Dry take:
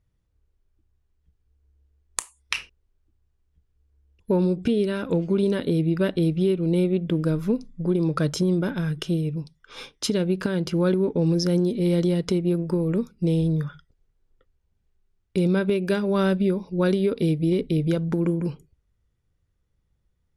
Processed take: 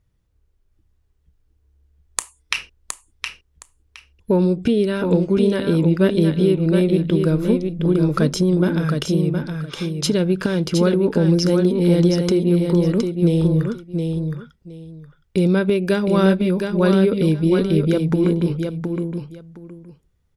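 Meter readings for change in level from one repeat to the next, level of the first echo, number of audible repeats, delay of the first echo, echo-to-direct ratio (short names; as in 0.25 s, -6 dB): -14.5 dB, -5.5 dB, 2, 0.716 s, -5.5 dB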